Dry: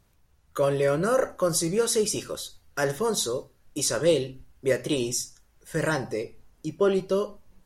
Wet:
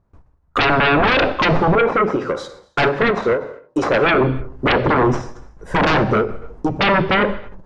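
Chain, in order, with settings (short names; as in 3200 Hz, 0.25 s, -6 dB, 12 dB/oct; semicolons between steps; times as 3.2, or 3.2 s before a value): tracing distortion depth 0.034 ms; treble ducked by the level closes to 680 Hz, closed at -18.5 dBFS; 1.75–4.21 HPF 470 Hz 6 dB/oct; gate with hold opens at -51 dBFS; EQ curve 1100 Hz 0 dB, 3100 Hz -18 dB, 9500 Hz -13 dB; sine folder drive 18 dB, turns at -11 dBFS; air absorption 100 m; non-linear reverb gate 0.33 s falling, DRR 11.5 dB; ending taper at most 140 dB/s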